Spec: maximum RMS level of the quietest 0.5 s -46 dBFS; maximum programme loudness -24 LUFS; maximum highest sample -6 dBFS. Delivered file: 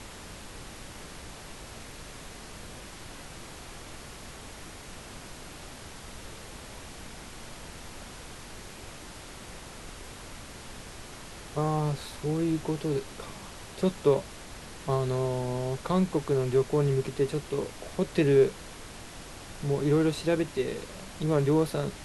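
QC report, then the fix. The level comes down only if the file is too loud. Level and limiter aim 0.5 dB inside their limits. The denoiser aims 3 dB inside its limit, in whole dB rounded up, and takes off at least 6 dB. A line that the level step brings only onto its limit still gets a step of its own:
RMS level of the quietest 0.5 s -44 dBFS: fail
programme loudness -28.5 LUFS: pass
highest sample -11.5 dBFS: pass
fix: noise reduction 6 dB, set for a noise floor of -44 dBFS

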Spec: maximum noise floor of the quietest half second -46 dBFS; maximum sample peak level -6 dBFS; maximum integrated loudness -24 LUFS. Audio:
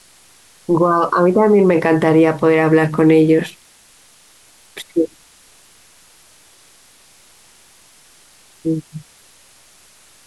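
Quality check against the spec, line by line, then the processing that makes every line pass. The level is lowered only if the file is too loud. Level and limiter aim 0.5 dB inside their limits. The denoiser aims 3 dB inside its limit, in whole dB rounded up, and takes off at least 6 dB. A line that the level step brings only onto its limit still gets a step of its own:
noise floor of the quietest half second -49 dBFS: pass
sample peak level -4.0 dBFS: fail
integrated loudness -14.5 LUFS: fail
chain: trim -10 dB

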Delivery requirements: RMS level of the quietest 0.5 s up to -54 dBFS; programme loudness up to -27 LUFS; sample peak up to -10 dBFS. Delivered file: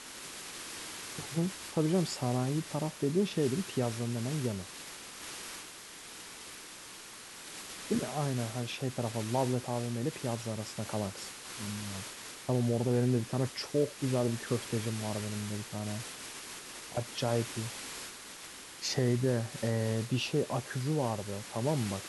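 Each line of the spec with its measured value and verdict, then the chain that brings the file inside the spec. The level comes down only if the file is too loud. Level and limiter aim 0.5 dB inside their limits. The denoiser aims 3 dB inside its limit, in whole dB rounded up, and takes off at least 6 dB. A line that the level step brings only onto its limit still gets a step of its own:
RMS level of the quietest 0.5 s -48 dBFS: fail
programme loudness -34.0 LUFS: pass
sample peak -16.5 dBFS: pass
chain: noise reduction 9 dB, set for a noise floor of -48 dBFS

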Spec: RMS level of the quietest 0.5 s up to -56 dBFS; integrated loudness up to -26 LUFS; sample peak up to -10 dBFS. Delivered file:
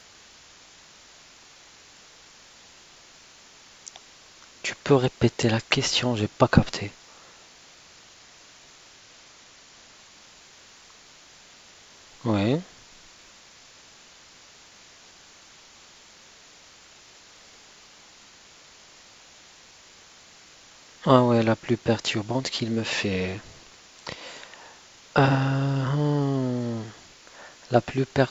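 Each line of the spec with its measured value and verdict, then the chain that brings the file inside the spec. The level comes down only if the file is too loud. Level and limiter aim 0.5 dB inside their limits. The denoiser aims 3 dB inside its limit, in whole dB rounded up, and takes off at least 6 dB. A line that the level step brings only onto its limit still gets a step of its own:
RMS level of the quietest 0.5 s -51 dBFS: fail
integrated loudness -24.5 LUFS: fail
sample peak -2.0 dBFS: fail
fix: noise reduction 6 dB, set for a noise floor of -51 dBFS; trim -2 dB; peak limiter -10.5 dBFS

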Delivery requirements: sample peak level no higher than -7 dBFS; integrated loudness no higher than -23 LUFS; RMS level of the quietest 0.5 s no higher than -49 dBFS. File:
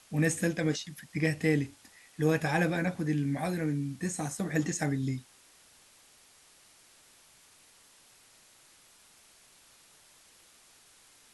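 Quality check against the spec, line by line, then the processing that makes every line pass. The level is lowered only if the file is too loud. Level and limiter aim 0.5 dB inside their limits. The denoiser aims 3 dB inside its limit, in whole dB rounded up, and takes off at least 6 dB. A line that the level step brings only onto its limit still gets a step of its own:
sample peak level -13.5 dBFS: pass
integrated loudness -31.0 LUFS: pass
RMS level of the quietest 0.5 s -60 dBFS: pass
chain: none needed

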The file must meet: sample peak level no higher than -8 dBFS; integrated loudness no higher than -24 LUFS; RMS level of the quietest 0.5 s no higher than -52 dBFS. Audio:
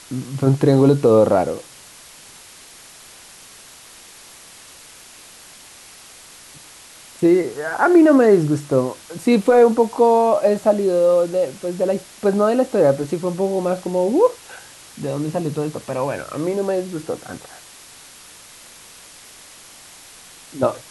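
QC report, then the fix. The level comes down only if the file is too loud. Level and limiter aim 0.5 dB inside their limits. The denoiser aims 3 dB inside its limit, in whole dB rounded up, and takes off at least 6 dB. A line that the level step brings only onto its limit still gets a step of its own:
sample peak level -3.5 dBFS: fail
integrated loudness -18.0 LUFS: fail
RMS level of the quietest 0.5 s -43 dBFS: fail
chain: noise reduction 6 dB, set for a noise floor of -43 dBFS; trim -6.5 dB

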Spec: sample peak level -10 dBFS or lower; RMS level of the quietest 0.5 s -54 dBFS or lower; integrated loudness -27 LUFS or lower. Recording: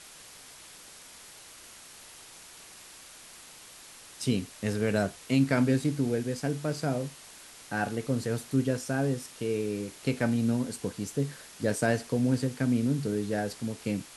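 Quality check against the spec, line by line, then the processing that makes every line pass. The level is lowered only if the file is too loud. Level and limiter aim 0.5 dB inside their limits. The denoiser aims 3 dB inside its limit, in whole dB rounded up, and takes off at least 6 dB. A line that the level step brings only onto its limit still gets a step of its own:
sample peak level -12.0 dBFS: pass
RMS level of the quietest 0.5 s -50 dBFS: fail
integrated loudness -30.0 LUFS: pass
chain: noise reduction 7 dB, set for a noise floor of -50 dBFS

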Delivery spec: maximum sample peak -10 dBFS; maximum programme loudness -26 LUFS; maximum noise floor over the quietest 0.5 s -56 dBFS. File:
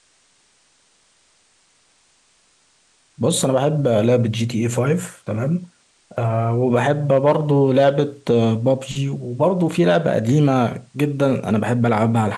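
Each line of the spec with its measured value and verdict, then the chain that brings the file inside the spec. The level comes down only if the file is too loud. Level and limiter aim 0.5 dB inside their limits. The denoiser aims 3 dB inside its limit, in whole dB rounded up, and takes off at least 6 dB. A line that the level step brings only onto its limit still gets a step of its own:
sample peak -4.5 dBFS: fail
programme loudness -19.0 LUFS: fail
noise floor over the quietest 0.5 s -59 dBFS: pass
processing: trim -7.5 dB

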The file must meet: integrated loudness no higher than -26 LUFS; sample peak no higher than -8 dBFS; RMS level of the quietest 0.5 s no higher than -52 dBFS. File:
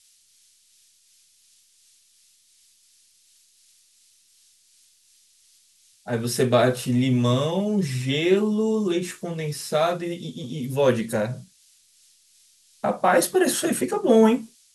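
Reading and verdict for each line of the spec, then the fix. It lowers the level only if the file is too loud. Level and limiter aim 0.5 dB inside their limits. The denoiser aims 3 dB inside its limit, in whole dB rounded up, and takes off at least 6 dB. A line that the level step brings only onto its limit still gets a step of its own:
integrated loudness -22.5 LUFS: fail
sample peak -5.5 dBFS: fail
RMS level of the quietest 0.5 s -60 dBFS: pass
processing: trim -4 dB

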